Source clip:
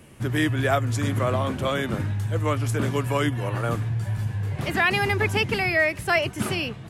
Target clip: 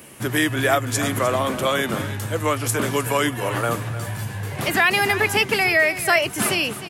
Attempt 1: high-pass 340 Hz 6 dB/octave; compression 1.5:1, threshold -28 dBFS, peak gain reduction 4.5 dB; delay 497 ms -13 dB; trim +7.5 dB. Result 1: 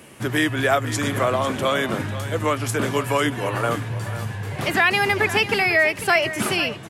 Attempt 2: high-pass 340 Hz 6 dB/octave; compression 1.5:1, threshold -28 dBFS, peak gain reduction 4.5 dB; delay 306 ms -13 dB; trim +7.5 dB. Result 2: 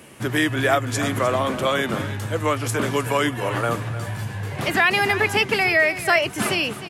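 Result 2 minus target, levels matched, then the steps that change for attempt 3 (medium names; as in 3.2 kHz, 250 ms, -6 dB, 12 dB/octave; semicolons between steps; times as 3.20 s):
8 kHz band -4.5 dB
add after compression: treble shelf 9.3 kHz +11.5 dB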